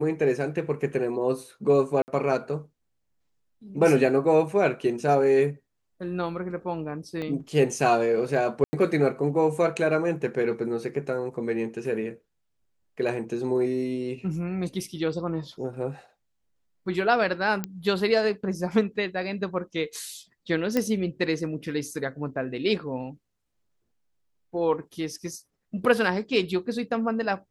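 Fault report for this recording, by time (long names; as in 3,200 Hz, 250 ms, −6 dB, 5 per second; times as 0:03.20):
0:02.02–0:02.08: drop-out 59 ms
0:07.22: drop-out 2.1 ms
0:08.64–0:08.73: drop-out 90 ms
0:17.64: click −14 dBFS
0:20.77: click −11 dBFS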